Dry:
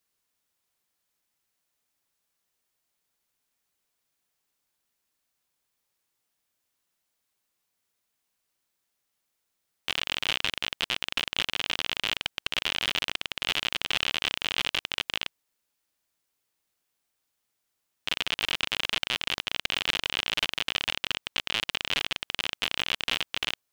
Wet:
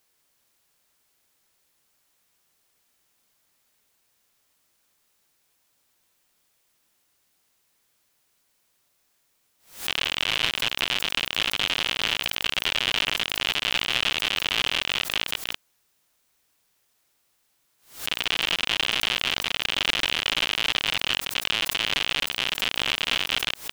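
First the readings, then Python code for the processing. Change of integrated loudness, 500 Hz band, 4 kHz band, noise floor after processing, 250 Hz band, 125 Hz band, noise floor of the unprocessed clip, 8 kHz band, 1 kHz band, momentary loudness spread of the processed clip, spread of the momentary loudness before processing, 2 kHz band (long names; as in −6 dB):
+4.5 dB, +4.5 dB, +4.5 dB, −70 dBFS, +4.5 dB, +4.5 dB, −80 dBFS, +6.0 dB, +4.5 dB, 3 LU, 4 LU, +4.5 dB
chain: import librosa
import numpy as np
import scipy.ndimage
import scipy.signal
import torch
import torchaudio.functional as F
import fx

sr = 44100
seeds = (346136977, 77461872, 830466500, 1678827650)

y = fx.reverse_delay(x, sr, ms=192, wet_db=-1)
y = fx.dmg_noise_colour(y, sr, seeds[0], colour='white', level_db=-72.0)
y = fx.pre_swell(y, sr, db_per_s=140.0)
y = F.gain(torch.from_numpy(y), 1.5).numpy()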